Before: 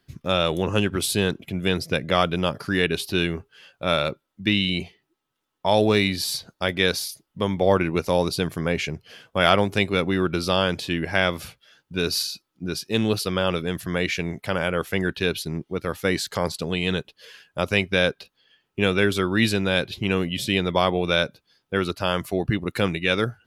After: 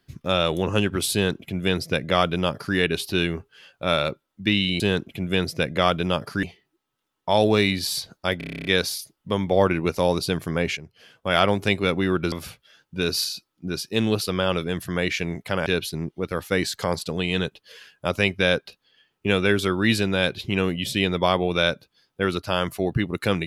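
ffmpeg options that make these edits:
-filter_complex "[0:a]asplit=15[s0][s1][s2][s3][s4][s5][s6][s7][s8][s9][s10][s11][s12][s13][s14];[s0]atrim=end=4.802[s15];[s1]atrim=start=1.128:end=2.762[s16];[s2]atrim=start=4.798:end=6.782[s17];[s3]atrim=start=6.748:end=6.782[s18];[s4]atrim=start=6.748:end=6.782[s19];[s5]atrim=start=6.748:end=6.782[s20];[s6]atrim=start=6.748:end=6.782[s21];[s7]atrim=start=6.748:end=6.782[s22];[s8]atrim=start=6.748:end=6.782[s23];[s9]atrim=start=6.748:end=6.782[s24];[s10]atrim=start=6.748:end=6.782[s25];[s11]atrim=start=6.748:end=8.87,asetpts=PTS-STARTPTS,afade=t=out:st=2.118:d=0.004:c=hsin:silence=0.251189[s26];[s12]atrim=start=8.87:end=10.422,asetpts=PTS-STARTPTS,afade=t=in:d=0.81:silence=0.251189[s27];[s13]atrim=start=11.298:end=14.642[s28];[s14]atrim=start=15.188[s29];[s15][s16]acrossfade=d=0.004:c1=hsin:c2=hsin[s30];[s30][s17]acrossfade=d=0.004:c1=hsin:c2=hsin[s31];[s31][s18]acrossfade=d=0.004:c1=hsin:c2=hsin[s32];[s32][s19]acrossfade=d=0.004:c1=hsin:c2=hsin[s33];[s33][s20]acrossfade=d=0.004:c1=hsin:c2=hsin[s34];[s34][s21]acrossfade=d=0.004:c1=hsin:c2=hsin[s35];[s35][s22]acrossfade=d=0.004:c1=hsin:c2=hsin[s36];[s36][s23]acrossfade=d=0.004:c1=hsin:c2=hsin[s37];[s37][s24]acrossfade=d=0.004:c1=hsin:c2=hsin[s38];[s38][s25]acrossfade=d=0.004:c1=hsin:c2=hsin[s39];[s26][s27]concat=n=2:v=0:a=1[s40];[s39][s40]acrossfade=d=0.004:c1=hsin:c2=hsin[s41];[s41][s28]acrossfade=d=0.004:c1=hsin:c2=hsin[s42];[s42][s29]acrossfade=d=0.004:c1=hsin:c2=hsin"

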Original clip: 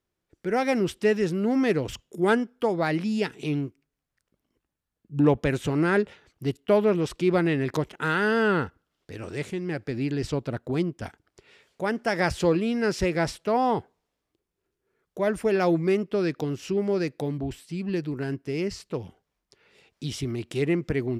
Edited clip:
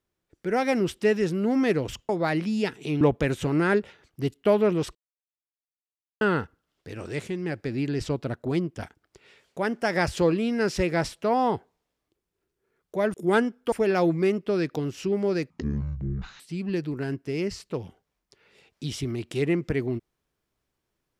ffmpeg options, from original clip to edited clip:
-filter_complex "[0:a]asplit=9[s0][s1][s2][s3][s4][s5][s6][s7][s8];[s0]atrim=end=2.092[s9];[s1]atrim=start=2.668:end=3.592[s10];[s2]atrim=start=5.238:end=7.18,asetpts=PTS-STARTPTS,afade=t=out:st=1.938:d=0.004:c=hsin[s11];[s3]atrim=start=7.18:end=8.44,asetpts=PTS-STARTPTS,volume=0[s12];[s4]atrim=start=8.44:end=15.372,asetpts=PTS-STARTPTS,afade=t=in:d=0.004:c=hsin[s13];[s5]atrim=start=2.088:end=2.672[s14];[s6]atrim=start=15.368:end=17.154[s15];[s7]atrim=start=17.15:end=17.6,asetpts=PTS-STARTPTS,asetrate=22050,aresample=44100[s16];[s8]atrim=start=17.596[s17];[s9][s10]acrossfade=d=0.004:c1=hsin:c2=hsin[s18];[s11][s12][s13]concat=n=3:v=0:a=1[s19];[s18][s19]acrossfade=d=0.004:c1=hsin:c2=hsin[s20];[s20][s14]acrossfade=d=0.004:c1=hsin:c2=hsin[s21];[s21][s15]acrossfade=d=0.004:c1=hsin:c2=hsin[s22];[s22][s16]acrossfade=d=0.004:c1=hsin:c2=hsin[s23];[s23][s17]acrossfade=d=0.004:c1=hsin:c2=hsin"

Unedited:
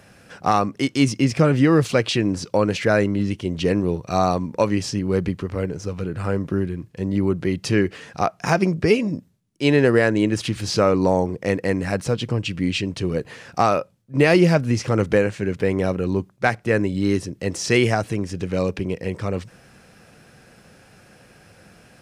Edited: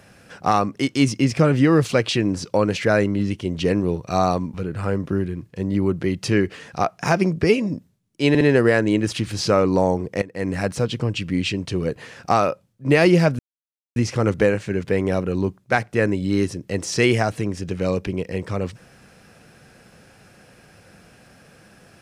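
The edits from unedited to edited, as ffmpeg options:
-filter_complex "[0:a]asplit=6[s0][s1][s2][s3][s4][s5];[s0]atrim=end=4.542[s6];[s1]atrim=start=5.948:end=9.762[s7];[s2]atrim=start=9.698:end=9.762[s8];[s3]atrim=start=9.698:end=11.51,asetpts=PTS-STARTPTS,afade=t=out:st=1.808:d=0.004:c=hsin:silence=0.133352[s9];[s4]atrim=start=11.51:end=14.68,asetpts=PTS-STARTPTS,afade=t=in:d=0.27:c=qua:silence=0.133352,afade=t=out:st=3.166:d=0.004:c=hsin,apad=pad_dur=0.57[s10];[s5]atrim=start=14.68,asetpts=PTS-STARTPTS,afade=t=in:d=0.004:c=hsin[s11];[s6][s7]acrossfade=d=0.004:c1=hsin:c2=hsin[s12];[s12][s8]acrossfade=d=0.004:c1=hsin:c2=hsin[s13];[s9][s10][s11]concat=n=3:v=0:a=1[s14];[s13][s14]acrossfade=d=0.004:c1=hsin:c2=hsin"

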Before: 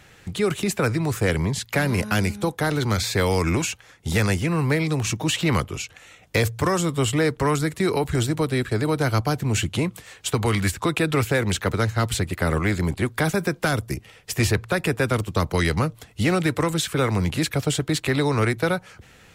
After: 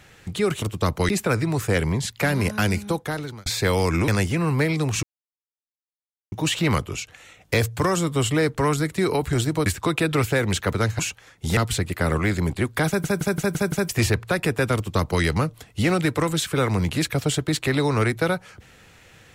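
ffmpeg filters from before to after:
-filter_complex "[0:a]asplit=15[s0][s1][s2][s3][s4][s5][s6][s7][s8][s9][s10][s11][s12][s13][s14];[s0]atrim=end=0.622[s15];[s1]atrim=start=15.158:end=15.632[s16];[s2]atrim=start=0.618:end=2.99,asetpts=PTS-STARTPTS,afade=t=out:st=1.792:d=0.58[s17];[s3]atrim=start=2.99:end=3.612,asetpts=PTS-STARTPTS,afade=t=in:d=0.004:c=hsin[s18];[s4]atrim=start=4.188:end=5.14,asetpts=PTS-STARTPTS,afade=t=out:st=0.948:d=0.004:c=hsin,apad=pad_dur=1.29[s19];[s5]atrim=start=5.14:end=8.482,asetpts=PTS-STARTPTS,afade=t=in:d=0.004:c=hsin[s20];[s6]atrim=start=10.648:end=11.982[s21];[s7]atrim=start=3.608:end=4.192[s22];[s8]atrim=start=11.978:end=13.452[s23];[s9]atrim=start=13.278:end=13.452[s24];[s10]atrim=start=13.278:end=13.452[s25];[s11]atrim=start=13.278:end=13.452[s26];[s12]atrim=start=13.278:end=13.452[s27];[s13]atrim=start=13.278:end=13.452[s28];[s14]atrim=start=14.298[s29];[s15][s16]acrossfade=d=0.004:c1=hsin:c2=hsin[s30];[s17][s18]concat=n=2:v=0:a=1[s31];[s30][s31]acrossfade=d=0.004:c1=hsin:c2=hsin[s32];[s19][s20]concat=n=2:v=0:a=1[s33];[s32][s33]acrossfade=d=0.004:c1=hsin:c2=hsin[s34];[s34][s21]acrossfade=d=0.004:c1=hsin:c2=hsin[s35];[s35][s22]acrossfade=d=0.004:c1=hsin:c2=hsin[s36];[s36][s23]acrossfade=d=0.004:c1=hsin:c2=hsin[s37];[s37][s24]acrossfade=d=0.004:c1=hsin:c2=hsin[s38];[s38][s25]acrossfade=d=0.004:c1=hsin:c2=hsin[s39];[s39][s26]acrossfade=d=0.004:c1=hsin:c2=hsin[s40];[s40][s27]acrossfade=d=0.004:c1=hsin:c2=hsin[s41];[s41][s28]acrossfade=d=0.004:c1=hsin:c2=hsin[s42];[s42][s29]acrossfade=d=0.004:c1=hsin:c2=hsin"

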